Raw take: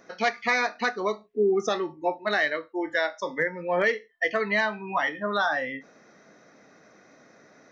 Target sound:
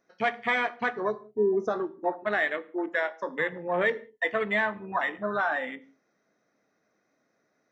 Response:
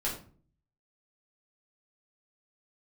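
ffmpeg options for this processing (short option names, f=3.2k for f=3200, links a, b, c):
-filter_complex "[0:a]afwtdn=0.0316,asplit=2[a][b];[1:a]atrim=start_sample=2205,atrim=end_sample=6615,asetrate=31752,aresample=44100[c];[b][c]afir=irnorm=-1:irlink=0,volume=-20dB[d];[a][d]amix=inputs=2:normalize=0,volume=-2.5dB"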